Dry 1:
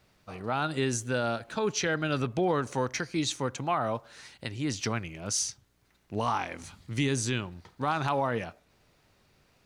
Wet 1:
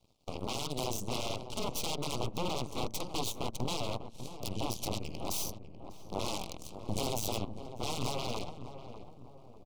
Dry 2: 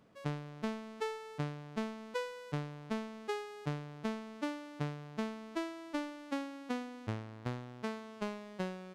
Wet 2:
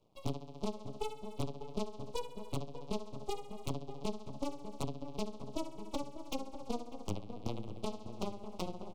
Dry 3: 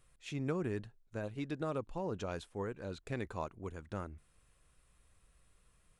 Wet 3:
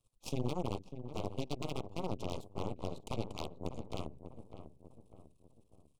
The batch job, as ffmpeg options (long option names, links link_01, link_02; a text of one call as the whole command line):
ffmpeg -i in.wav -filter_complex "[0:a]bandreject=frequency=60:width_type=h:width=6,bandreject=frequency=120:width_type=h:width=6,bandreject=frequency=180:width_type=h:width=6,afreqshift=-15,equalizer=frequency=110:width_type=o:width=0.37:gain=6,acompressor=threshold=-52dB:ratio=2,aeval=exprs='0.0355*(cos(1*acos(clip(val(0)/0.0355,-1,1)))-cos(1*PI/2))+0.0141*(cos(4*acos(clip(val(0)/0.0355,-1,1)))-cos(4*PI/2))+0.00316*(cos(5*acos(clip(val(0)/0.0355,-1,1)))-cos(5*PI/2))+0.00708*(cos(7*acos(clip(val(0)/0.0355,-1,1)))-cos(7*PI/2))':channel_layout=same,aeval=exprs='0.0158*(abs(mod(val(0)/0.0158+3,4)-2)-1)':channel_layout=same,asuperstop=centerf=1700:order=4:qfactor=0.94,highshelf=frequency=8200:gain=-3.5,asplit=2[link_01][link_02];[link_02]adelay=597,lowpass=frequency=1100:poles=1,volume=-9.5dB,asplit=2[link_03][link_04];[link_04]adelay=597,lowpass=frequency=1100:poles=1,volume=0.47,asplit=2[link_05][link_06];[link_06]adelay=597,lowpass=frequency=1100:poles=1,volume=0.47,asplit=2[link_07][link_08];[link_08]adelay=597,lowpass=frequency=1100:poles=1,volume=0.47,asplit=2[link_09][link_10];[link_10]adelay=597,lowpass=frequency=1100:poles=1,volume=0.47[link_11];[link_01][link_03][link_05][link_07][link_09][link_11]amix=inputs=6:normalize=0,volume=14dB" out.wav